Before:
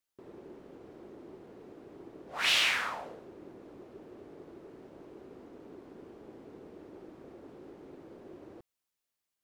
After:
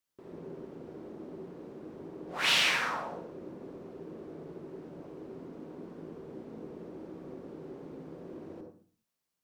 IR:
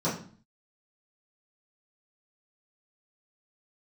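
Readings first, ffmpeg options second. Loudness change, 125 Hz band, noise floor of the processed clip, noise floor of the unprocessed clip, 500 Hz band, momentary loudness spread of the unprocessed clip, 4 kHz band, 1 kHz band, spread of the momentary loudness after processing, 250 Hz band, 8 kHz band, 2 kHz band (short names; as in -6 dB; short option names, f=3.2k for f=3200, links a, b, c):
-7.5 dB, +8.0 dB, under -85 dBFS, under -85 dBFS, +4.5 dB, 19 LU, +0.5 dB, +3.0 dB, 18 LU, +5.5 dB, +1.0 dB, +1.0 dB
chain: -filter_complex "[0:a]asplit=2[a][b];[1:a]atrim=start_sample=2205,adelay=53[c];[b][c]afir=irnorm=-1:irlink=0,volume=-12.5dB[d];[a][d]amix=inputs=2:normalize=0"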